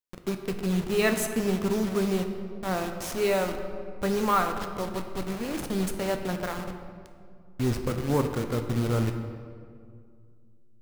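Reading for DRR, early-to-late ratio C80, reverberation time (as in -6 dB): 5.5 dB, 8.5 dB, 2.2 s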